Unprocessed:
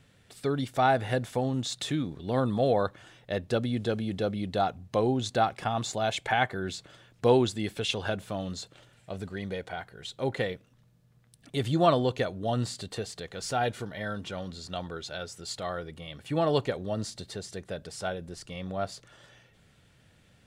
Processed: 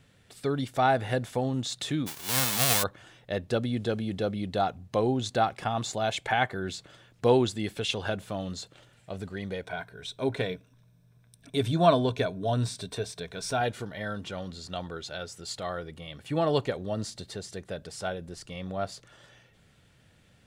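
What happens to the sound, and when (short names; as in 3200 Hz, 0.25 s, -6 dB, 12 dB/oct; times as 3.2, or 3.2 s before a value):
2.06–2.82 spectral whitening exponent 0.1
9.64–13.61 ripple EQ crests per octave 1.6, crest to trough 9 dB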